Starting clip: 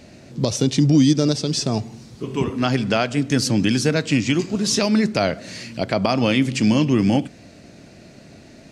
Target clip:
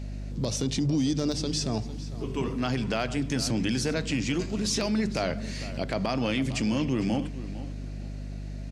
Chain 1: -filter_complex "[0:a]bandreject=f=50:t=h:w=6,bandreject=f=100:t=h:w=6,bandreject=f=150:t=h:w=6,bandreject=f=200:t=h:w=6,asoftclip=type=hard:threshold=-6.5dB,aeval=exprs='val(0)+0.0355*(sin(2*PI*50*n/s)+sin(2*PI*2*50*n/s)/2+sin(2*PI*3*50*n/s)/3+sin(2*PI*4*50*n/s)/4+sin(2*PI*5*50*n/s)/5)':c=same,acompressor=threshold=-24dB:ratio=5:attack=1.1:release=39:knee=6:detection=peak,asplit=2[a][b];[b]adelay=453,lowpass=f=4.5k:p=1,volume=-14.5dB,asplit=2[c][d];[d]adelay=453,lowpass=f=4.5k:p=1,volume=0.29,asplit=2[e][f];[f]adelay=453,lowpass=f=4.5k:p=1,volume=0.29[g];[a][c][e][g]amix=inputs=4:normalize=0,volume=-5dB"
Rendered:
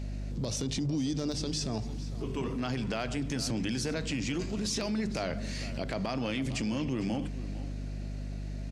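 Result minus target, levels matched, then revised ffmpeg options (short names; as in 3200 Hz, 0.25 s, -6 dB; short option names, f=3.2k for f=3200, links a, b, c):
compressor: peak gain reduction +5.5 dB
-filter_complex "[0:a]bandreject=f=50:t=h:w=6,bandreject=f=100:t=h:w=6,bandreject=f=150:t=h:w=6,bandreject=f=200:t=h:w=6,asoftclip=type=hard:threshold=-6.5dB,aeval=exprs='val(0)+0.0355*(sin(2*PI*50*n/s)+sin(2*PI*2*50*n/s)/2+sin(2*PI*3*50*n/s)/3+sin(2*PI*4*50*n/s)/4+sin(2*PI*5*50*n/s)/5)':c=same,acompressor=threshold=-17dB:ratio=5:attack=1.1:release=39:knee=6:detection=peak,asplit=2[a][b];[b]adelay=453,lowpass=f=4.5k:p=1,volume=-14.5dB,asplit=2[c][d];[d]adelay=453,lowpass=f=4.5k:p=1,volume=0.29,asplit=2[e][f];[f]adelay=453,lowpass=f=4.5k:p=1,volume=0.29[g];[a][c][e][g]amix=inputs=4:normalize=0,volume=-5dB"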